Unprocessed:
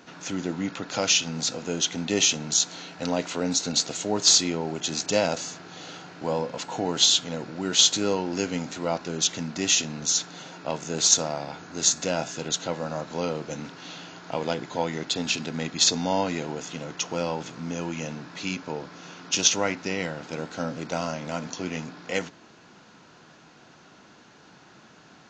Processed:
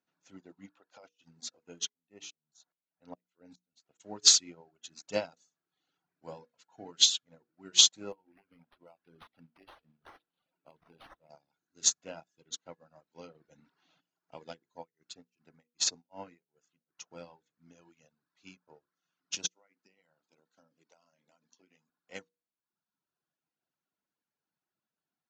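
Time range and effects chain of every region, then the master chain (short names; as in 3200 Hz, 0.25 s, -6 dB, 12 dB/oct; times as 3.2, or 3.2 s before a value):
0.69–1.24 HPF 460 Hz 6 dB/oct + negative-ratio compressor -30 dBFS + high shelf 2800 Hz -11 dB
1.89–4 high shelf 3300 Hz -8.5 dB + dB-ramp tremolo swelling 2.4 Hz, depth 18 dB
8.12–11.3 high shelf 6000 Hz +11 dB + compressor 12:1, threshold -25 dBFS + decimation joined by straight lines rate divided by 6×
13.27–14.01 LPF 3000 Hz 6 dB/oct + fast leveller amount 50%
14.73–17.03 bell 3400 Hz -6 dB 0.37 oct + beating tremolo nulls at 2.6 Hz
19.46–21.9 HPF 170 Hz + compressor 12:1, threshold -29 dBFS + high shelf 4300 Hz +4 dB
whole clip: reverb removal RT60 1.5 s; notches 60/120/180/240/300/360/420/480 Hz; upward expander 2.5:1, over -41 dBFS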